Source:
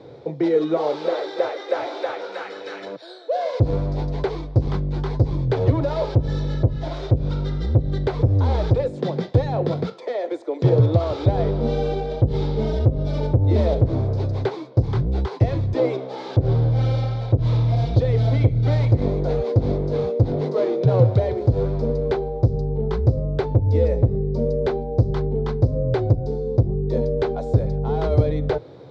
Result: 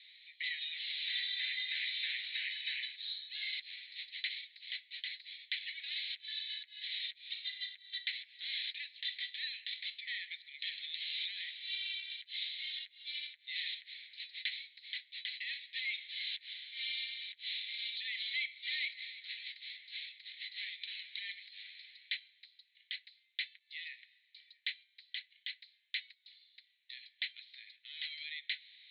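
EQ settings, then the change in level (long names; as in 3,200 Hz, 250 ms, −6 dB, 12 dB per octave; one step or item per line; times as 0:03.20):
Butterworth high-pass 1,900 Hz 96 dB per octave
Chebyshev low-pass with heavy ripple 4,200 Hz, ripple 3 dB
+7.0 dB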